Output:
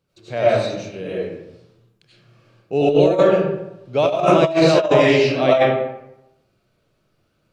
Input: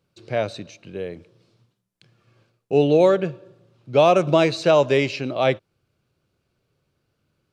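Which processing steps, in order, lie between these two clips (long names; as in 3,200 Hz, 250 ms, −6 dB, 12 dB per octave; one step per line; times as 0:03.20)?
comb and all-pass reverb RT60 0.88 s, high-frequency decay 0.6×, pre-delay 55 ms, DRR −9 dB
compressor whose output falls as the input rises −8 dBFS, ratio −0.5
level −5 dB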